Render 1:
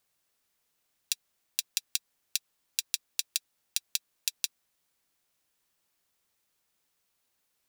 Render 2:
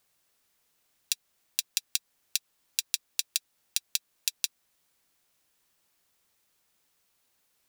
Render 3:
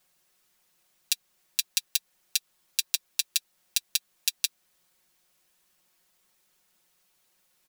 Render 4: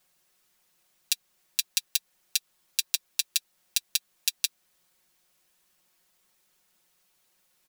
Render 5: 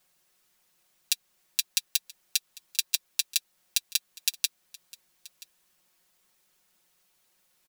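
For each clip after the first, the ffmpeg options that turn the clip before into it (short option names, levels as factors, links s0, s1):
-af "alimiter=limit=0.501:level=0:latency=1:release=290,volume=1.68"
-af "aecho=1:1:5.5:0.97"
-af anull
-af "aecho=1:1:979:0.0841"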